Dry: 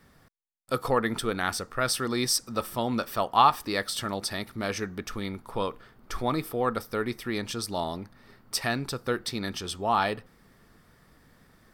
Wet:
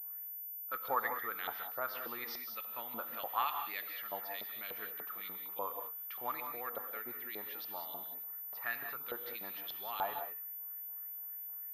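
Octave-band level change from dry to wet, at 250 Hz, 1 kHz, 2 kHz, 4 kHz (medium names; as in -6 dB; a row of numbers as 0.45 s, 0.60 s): -24.0 dB, -11.5 dB, -9.0 dB, -16.5 dB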